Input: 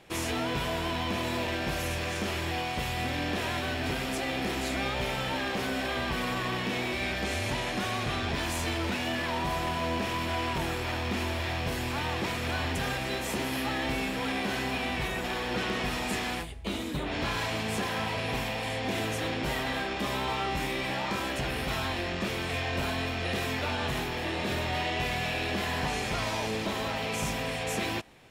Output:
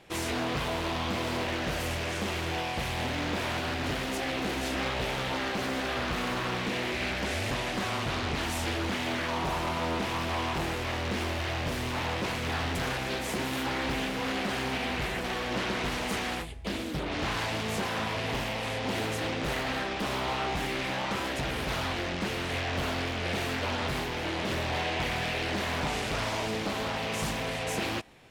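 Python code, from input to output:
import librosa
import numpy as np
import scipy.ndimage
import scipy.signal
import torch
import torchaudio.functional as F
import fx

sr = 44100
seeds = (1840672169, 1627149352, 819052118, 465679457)

y = fx.doppler_dist(x, sr, depth_ms=0.72)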